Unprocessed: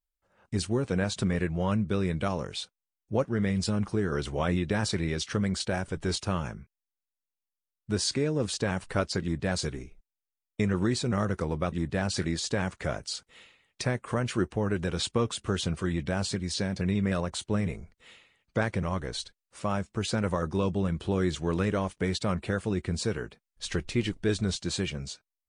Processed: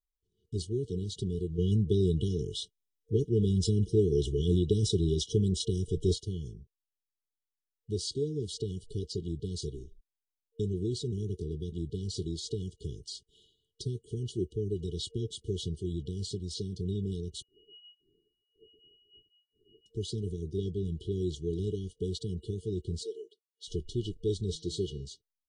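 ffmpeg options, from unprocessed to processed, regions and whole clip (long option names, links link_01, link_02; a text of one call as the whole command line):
ffmpeg -i in.wav -filter_complex "[0:a]asettb=1/sr,asplit=3[link_01][link_02][link_03];[link_01]atrim=end=1.584[link_04];[link_02]atrim=start=1.58:end=6.14,asetpts=PTS-STARTPTS,afade=type=in:duration=0.004:curve=qsin,afade=type=out:start_time=4.556:duration=0.004:curve=qsin,asuperstop=centerf=4500:order=4:qfactor=7.8,acontrast=86[link_05];[link_03]atrim=start=6.136[link_06];[link_04][link_05]acrossfade=duration=0.004:curve1=hsin:curve2=qsin[link_07];[link_07][link_06]acrossfade=duration=0.004:curve1=qsin:curve2=hsin,asettb=1/sr,asplit=3[link_08][link_09][link_10];[link_08]atrim=end=17.424[link_11];[link_09]atrim=start=17.42:end=19.86,asetpts=PTS-STARTPTS,afade=type=in:duration=0.004:curve=qsin,afade=type=out:start_time=2.436:duration=0.004:curve=qsin,aemphasis=mode=reproduction:type=bsi,lowpass=frequency=2500:width_type=q:width=0.5098,lowpass=frequency=2500:width_type=q:width=0.6013,lowpass=frequency=2500:width_type=q:width=0.9,lowpass=frequency=2500:width_type=q:width=2.563,afreqshift=-2900[link_12];[link_10]atrim=start=19.856[link_13];[link_11][link_12]acrossfade=duration=0.004:curve1=hsin:curve2=qsin[link_14];[link_14][link_13]acrossfade=duration=0.004:curve1=qsin:curve2=hsin,asettb=1/sr,asplit=3[link_15][link_16][link_17];[link_15]atrim=end=23.034[link_18];[link_16]atrim=start=23.03:end=23.68,asetpts=PTS-STARTPTS,afade=type=in:duration=0.004:curve=qsin,afade=type=out:start_time=0.646:duration=0.004:curve=qsin,highpass=frequency=430:width=0.5412,highpass=frequency=430:width=1.3066,highshelf=frequency=5100:gain=-5[link_19];[link_17]atrim=start=23.676[link_20];[link_18][link_19]acrossfade=duration=0.004:curve1=hsin:curve2=qsin[link_21];[link_21][link_20]acrossfade=duration=0.004:curve1=qsin:curve2=hsin,asettb=1/sr,asplit=3[link_22][link_23][link_24];[link_22]atrim=end=24.484[link_25];[link_23]atrim=start=24.48:end=25.05,asetpts=PTS-STARTPTS,afade=type=in:duration=0.004:curve=qsin,afade=type=out:start_time=0.566:duration=0.004:curve=qsin,equalizer=frequency=530:width_type=o:width=1.4:gain=7.5,bandreject=frequency=161.2:width_type=h:width=4,bandreject=frequency=322.4:width_type=h:width=4,bandreject=frequency=483.6:width_type=h:width=4,bandreject=frequency=644.8:width_type=h:width=4,bandreject=frequency=806:width_type=h:width=4,bandreject=frequency=967.2:width_type=h:width=4,bandreject=frequency=1128.4:width_type=h:width=4,bandreject=frequency=1289.6:width_type=h:width=4,bandreject=frequency=1450.8:width_type=h:width=4,bandreject=frequency=1612:width_type=h:width=4,bandreject=frequency=1773.2:width_type=h:width=4,bandreject=frequency=1934.4:width_type=h:width=4,bandreject=frequency=2095.6:width_type=h:width=4,bandreject=frequency=2256.8:width_type=h:width=4,bandreject=frequency=2418:width_type=h:width=4,bandreject=frequency=2579.2:width_type=h:width=4,bandreject=frequency=2740.4:width_type=h:width=4,bandreject=frequency=2901.6:width_type=h:width=4,bandreject=frequency=3062.8:width_type=h:width=4,bandreject=frequency=3224:width_type=h:width=4,bandreject=frequency=3385.2:width_type=h:width=4,bandreject=frequency=3546.4:width_type=h:width=4,bandreject=frequency=3707.6:width_type=h:width=4,bandreject=frequency=3868.8:width_type=h:width=4,bandreject=frequency=4030:width_type=h:width=4,bandreject=frequency=4191.2:width_type=h:width=4,bandreject=frequency=4352.4:width_type=h:width=4,bandreject=frequency=4513.6:width_type=h:width=4,bandreject=frequency=4674.8:width_type=h:width=4,bandreject=frequency=4836:width_type=h:width=4,bandreject=frequency=4997.2:width_type=h:width=4,bandreject=frequency=5158.4:width_type=h:width=4,bandreject=frequency=5319.6:width_type=h:width=4,bandreject=frequency=5480.8:width_type=h:width=4,bandreject=frequency=5642:width_type=h:width=4,bandreject=frequency=5803.2:width_type=h:width=4,bandreject=frequency=5964.4:width_type=h:width=4,bandreject=frequency=6125.6:width_type=h:width=4,bandreject=frequency=6286.8:width_type=h:width=4,bandreject=frequency=6448:width_type=h:width=4[link_26];[link_24]atrim=start=25.046[link_27];[link_25][link_26]acrossfade=duration=0.004:curve1=hsin:curve2=qsin[link_28];[link_28][link_27]acrossfade=duration=0.004:curve1=qsin:curve2=hsin,highshelf=frequency=4900:gain=-7.5,afftfilt=real='re*(1-between(b*sr/4096,460,2900))':imag='im*(1-between(b*sr/4096,460,2900))':win_size=4096:overlap=0.75,aecho=1:1:2.1:0.55,volume=-4.5dB" out.wav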